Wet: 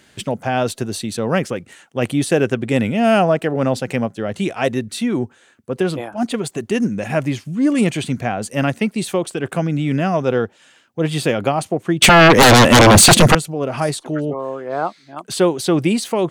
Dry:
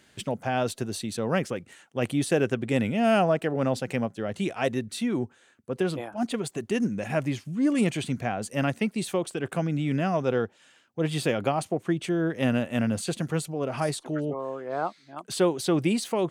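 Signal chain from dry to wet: 12.02–13.35 s: sine folder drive 18 dB, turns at -12 dBFS; trim +7.5 dB

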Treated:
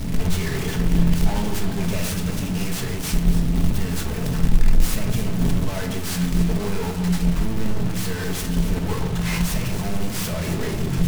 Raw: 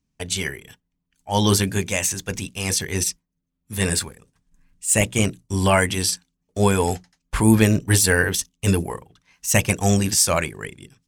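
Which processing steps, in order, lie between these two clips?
one-bit comparator; bass shelf 250 Hz +11.5 dB; hum notches 50/100/150 Hz; level held to a coarse grid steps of 14 dB; peak limiter -16.5 dBFS, peak gain reduction 8 dB; echo whose repeats swap between lows and highs 139 ms, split 960 Hz, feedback 71%, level -8 dB; simulated room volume 490 m³, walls furnished, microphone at 1.5 m; delay time shaken by noise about 2.6 kHz, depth 0.036 ms

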